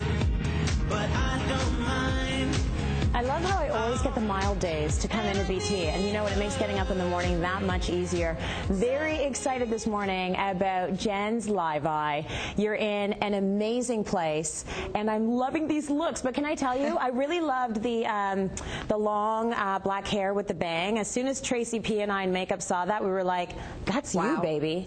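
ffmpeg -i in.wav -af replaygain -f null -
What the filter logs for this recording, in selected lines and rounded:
track_gain = +10.7 dB
track_peak = 0.176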